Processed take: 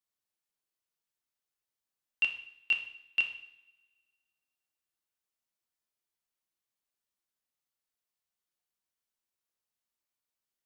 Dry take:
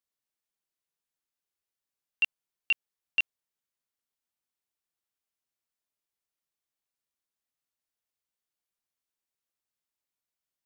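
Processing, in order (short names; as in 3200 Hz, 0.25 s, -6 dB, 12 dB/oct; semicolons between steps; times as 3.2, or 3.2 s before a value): two-slope reverb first 0.68 s, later 1.8 s, from -21 dB, DRR 3.5 dB; gain -2.5 dB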